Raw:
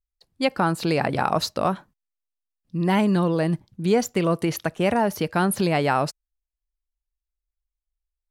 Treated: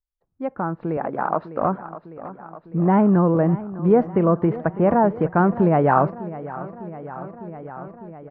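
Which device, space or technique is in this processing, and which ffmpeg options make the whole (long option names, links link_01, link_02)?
action camera in a waterproof case: -filter_complex "[0:a]asettb=1/sr,asplit=3[link_01][link_02][link_03];[link_01]atrim=end=0.974[link_04];[link_02]atrim=start=0.97:end=1.62,asetpts=PTS-STARTPTS,afade=type=in:duration=0.004:curve=qsin,afade=type=out:start_time=0.646:duration=0.004:curve=qsin,highpass=250[link_05];[link_03]atrim=start=1.616[link_06];[link_04][link_05]acrossfade=duration=0.004:curve1=hsin:curve2=qsin[link_07];[link_07][link_06]acrossfade=duration=0.004:curve1=qsin:curve2=hsin,lowpass=frequency=1400:width=0.5412,lowpass=frequency=1400:width=1.3066,aecho=1:1:603|1206|1809|2412|3015|3618:0.158|0.0935|0.0552|0.0326|0.0192|0.0113,dynaudnorm=framelen=470:gausssize=5:maxgain=16dB,volume=-4.5dB" -ar 48000 -c:a aac -b:a 48k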